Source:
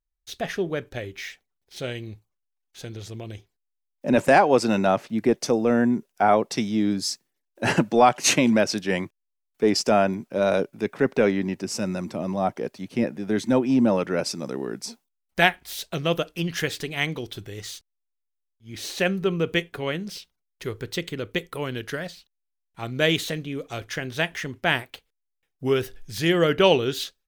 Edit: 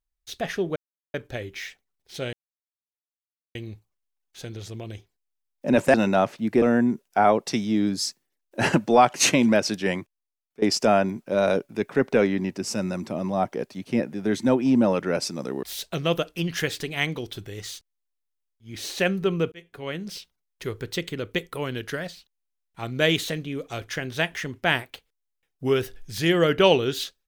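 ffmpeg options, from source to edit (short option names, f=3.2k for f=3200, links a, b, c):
-filter_complex "[0:a]asplit=8[a][b][c][d][e][f][g][h];[a]atrim=end=0.76,asetpts=PTS-STARTPTS,afade=t=out:st=0.756:d=0.004:c=hsin,apad=pad_dur=0.38[i];[b]atrim=start=0.76:end=1.95,asetpts=PTS-STARTPTS,afade=t=in:d=0.004:c=hsin,afade=t=out:st=1.186:d=0.004:c=hsin,apad=pad_dur=1.22[j];[c]atrim=start=1.95:end=4.342,asetpts=PTS-STARTPTS,afade=t=in:d=0.004:c=hsin[k];[d]atrim=start=4.648:end=5.332[l];[e]atrim=start=5.658:end=9.66,asetpts=PTS-STARTPTS,afade=t=out:st=3.222:d=0.78:silence=0.1[m];[f]atrim=start=9.66:end=14.672,asetpts=PTS-STARTPTS,afade=t=in:d=0.004:c=hsin:silence=0.1[n];[g]atrim=start=15.628:end=19.52,asetpts=PTS-STARTPTS,afade=t=out:st=3.888:d=0.004:c=hsin[o];[h]atrim=start=19.52,asetpts=PTS-STARTPTS,afade=t=in:d=0.62[p];[i][j][k]concat=n=3:v=0:a=1[q];[q][l]acrossfade=d=0.004:c1=hsin:c2=hsin[r];[m][n]concat=n=2:v=0:a=1[s];[r][s]acrossfade=d=0.004:c1=hsin:c2=hsin[t];[o][p]concat=n=2:v=0:a=1[u];[t][u]acrossfade=d=0.004:c1=hsin:c2=hsin"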